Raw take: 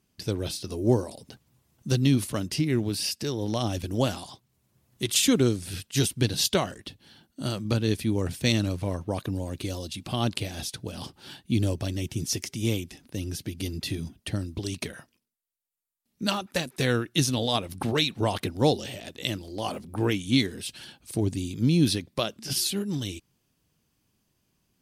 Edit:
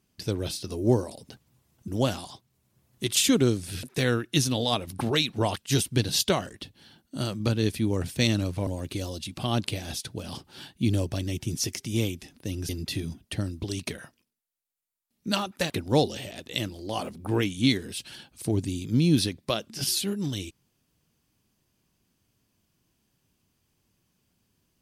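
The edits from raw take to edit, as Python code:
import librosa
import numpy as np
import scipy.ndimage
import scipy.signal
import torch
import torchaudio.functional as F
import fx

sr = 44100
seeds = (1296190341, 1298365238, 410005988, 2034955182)

y = fx.edit(x, sr, fx.cut(start_s=1.88, length_s=1.99),
    fx.cut(start_s=8.92, length_s=0.44),
    fx.cut(start_s=13.38, length_s=0.26),
    fx.move(start_s=16.65, length_s=1.74, to_s=5.82), tone=tone)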